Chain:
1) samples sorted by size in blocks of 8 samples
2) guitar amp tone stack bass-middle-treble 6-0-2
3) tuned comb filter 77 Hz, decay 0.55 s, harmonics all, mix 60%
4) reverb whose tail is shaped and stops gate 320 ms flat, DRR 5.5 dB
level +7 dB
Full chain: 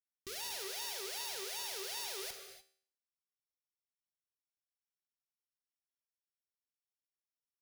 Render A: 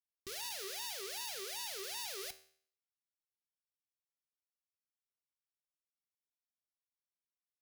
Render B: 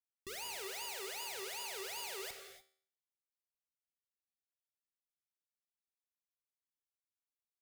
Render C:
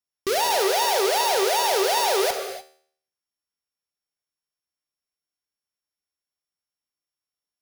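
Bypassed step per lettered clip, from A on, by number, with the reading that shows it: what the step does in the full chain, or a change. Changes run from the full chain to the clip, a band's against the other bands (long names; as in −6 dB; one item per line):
4, change in momentary loudness spread −3 LU
1, distortion level −5 dB
2, 1 kHz band +10.5 dB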